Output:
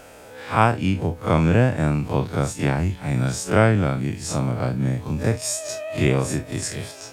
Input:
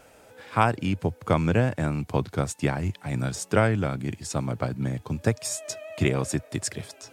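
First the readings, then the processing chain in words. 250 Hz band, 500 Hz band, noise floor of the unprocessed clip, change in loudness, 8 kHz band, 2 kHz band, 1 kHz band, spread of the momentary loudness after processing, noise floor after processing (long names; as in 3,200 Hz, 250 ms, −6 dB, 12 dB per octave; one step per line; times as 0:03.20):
+5.0 dB, +4.5 dB, −54 dBFS, +5.0 dB, +4.0 dB, +4.5 dB, +4.0 dB, 8 LU, −42 dBFS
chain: spectrum smeared in time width 81 ms
in parallel at −2.5 dB: downward compressor, threshold −38 dBFS, peak gain reduction 20 dB
on the sum: level +5.5 dB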